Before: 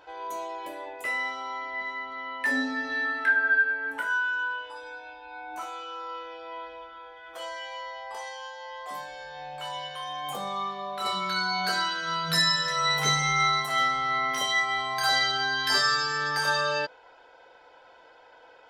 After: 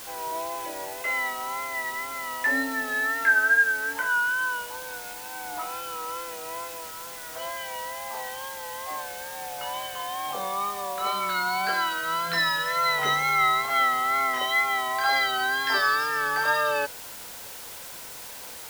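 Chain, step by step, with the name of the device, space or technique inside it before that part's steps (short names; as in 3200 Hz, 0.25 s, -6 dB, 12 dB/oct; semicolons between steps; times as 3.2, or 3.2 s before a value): wax cylinder (BPF 290–2800 Hz; wow and flutter; white noise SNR 13 dB); gain +3 dB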